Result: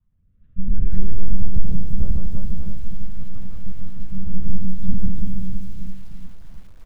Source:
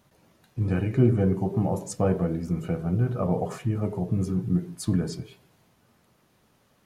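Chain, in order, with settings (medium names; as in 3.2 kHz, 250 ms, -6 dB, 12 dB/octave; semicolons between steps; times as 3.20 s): single-diode clipper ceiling -14 dBFS; compression 4:1, threshold -30 dBFS, peak gain reduction 11 dB; 2.11–4.15 s: gate -29 dBFS, range -12 dB; monotone LPC vocoder at 8 kHz 190 Hz; high-order bell 500 Hz -12.5 dB; reverse bouncing-ball echo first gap 150 ms, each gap 1.3×, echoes 5; level rider gain up to 16 dB; tilt EQ -4.5 dB/octave; rotary cabinet horn 0.7 Hz, later 5 Hz, at 3.10 s; bit-crushed delay 336 ms, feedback 35%, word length 5-bit, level -7.5 dB; trim -18 dB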